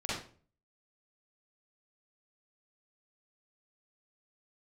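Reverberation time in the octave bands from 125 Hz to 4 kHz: 0.60, 0.50, 0.45, 0.40, 0.35, 0.35 seconds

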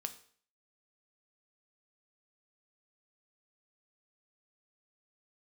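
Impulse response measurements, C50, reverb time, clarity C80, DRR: 14.0 dB, 0.50 s, 17.0 dB, 8.0 dB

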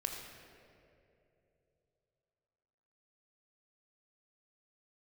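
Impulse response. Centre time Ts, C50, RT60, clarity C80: 72 ms, 3.0 dB, 2.9 s, 4.0 dB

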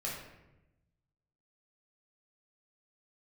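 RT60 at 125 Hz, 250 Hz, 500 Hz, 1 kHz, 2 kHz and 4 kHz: 1.6, 1.3, 1.0, 0.85, 0.85, 0.60 seconds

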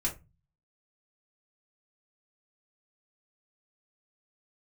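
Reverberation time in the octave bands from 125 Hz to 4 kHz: 0.65, 0.40, 0.25, 0.20, 0.20, 0.15 seconds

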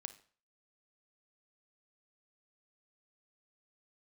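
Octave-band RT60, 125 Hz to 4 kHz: 0.45, 0.40, 0.45, 0.45, 0.45, 0.40 seconds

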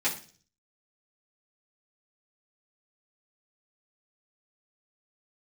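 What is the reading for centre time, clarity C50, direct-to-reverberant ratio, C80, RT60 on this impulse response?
19 ms, 10.5 dB, −9.0 dB, 15.0 dB, 0.40 s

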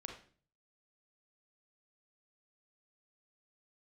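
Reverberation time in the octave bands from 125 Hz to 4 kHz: 0.75, 0.60, 0.50, 0.40, 0.40, 0.40 seconds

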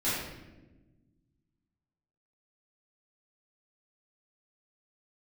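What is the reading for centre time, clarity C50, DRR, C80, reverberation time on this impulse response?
79 ms, −1.0 dB, −12.5 dB, 2.0 dB, 1.1 s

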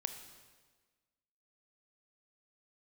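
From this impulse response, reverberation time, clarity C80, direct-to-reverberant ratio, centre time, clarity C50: 1.4 s, 10.5 dB, 7.5 dB, 20 ms, 9.0 dB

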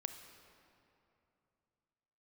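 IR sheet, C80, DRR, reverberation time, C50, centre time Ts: 9.0 dB, 7.5 dB, 2.8 s, 8.0 dB, 33 ms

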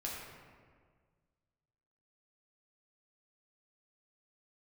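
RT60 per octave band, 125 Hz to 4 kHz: 2.2, 1.9, 1.8, 1.6, 1.4, 1.0 seconds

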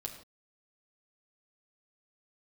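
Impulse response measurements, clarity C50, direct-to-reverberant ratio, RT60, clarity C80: 8.0 dB, 0.0 dB, non-exponential decay, 10.0 dB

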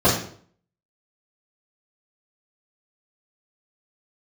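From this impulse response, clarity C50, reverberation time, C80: 5.5 dB, 0.55 s, 9.0 dB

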